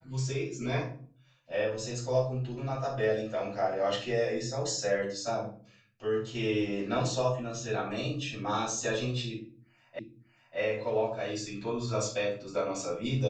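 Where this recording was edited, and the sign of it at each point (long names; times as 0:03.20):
0:09.99: the same again, the last 0.59 s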